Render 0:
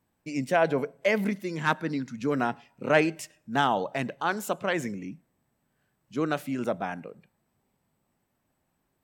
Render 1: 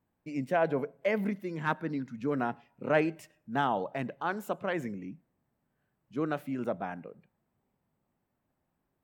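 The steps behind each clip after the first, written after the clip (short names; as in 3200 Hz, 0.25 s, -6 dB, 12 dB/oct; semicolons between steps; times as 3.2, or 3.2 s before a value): bell 6900 Hz -11.5 dB 2.3 oct; gain -3.5 dB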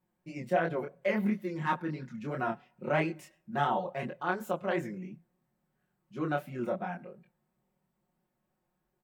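comb 5.5 ms, depth 97%; chorus 2.9 Hz, depth 5.3 ms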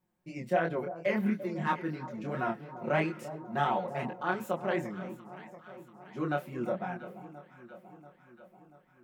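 echo with dull and thin repeats by turns 0.343 s, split 1100 Hz, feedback 75%, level -12.5 dB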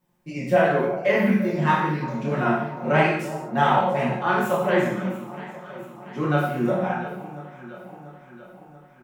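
doubler 47 ms -13 dB; non-linear reverb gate 0.24 s falling, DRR -3.5 dB; gain +6 dB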